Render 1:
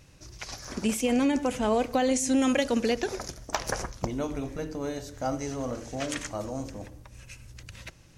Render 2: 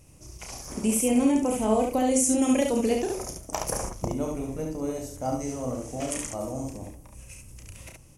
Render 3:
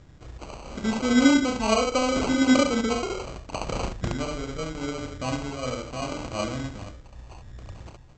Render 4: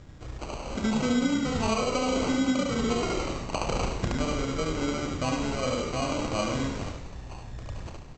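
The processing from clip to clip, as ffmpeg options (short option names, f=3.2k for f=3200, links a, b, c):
-filter_complex "[0:a]equalizer=f=1.6k:t=o:w=0.67:g=-11,equalizer=f=4k:t=o:w=0.67:g=-12,equalizer=f=10k:t=o:w=0.67:g=11,asplit=2[a][b];[b]aecho=0:1:32|70:0.531|0.668[c];[a][c]amix=inputs=2:normalize=0"
-af "aphaser=in_gain=1:out_gain=1:delay=2.1:decay=0.4:speed=0.78:type=triangular,aresample=16000,acrusher=samples=9:mix=1:aa=0.000001,aresample=44100"
-filter_complex "[0:a]asplit=2[a][b];[b]asplit=8[c][d][e][f][g][h][i][j];[c]adelay=100,afreqshift=-64,volume=-10dB[k];[d]adelay=200,afreqshift=-128,volume=-14dB[l];[e]adelay=300,afreqshift=-192,volume=-18dB[m];[f]adelay=400,afreqshift=-256,volume=-22dB[n];[g]adelay=500,afreqshift=-320,volume=-26.1dB[o];[h]adelay=600,afreqshift=-384,volume=-30.1dB[p];[i]adelay=700,afreqshift=-448,volume=-34.1dB[q];[j]adelay=800,afreqshift=-512,volume=-38.1dB[r];[k][l][m][n][o][p][q][r]amix=inputs=8:normalize=0[s];[a][s]amix=inputs=2:normalize=0,acompressor=threshold=-26dB:ratio=16,asplit=2[t][u];[u]aecho=0:1:74:0.422[v];[t][v]amix=inputs=2:normalize=0,volume=2.5dB"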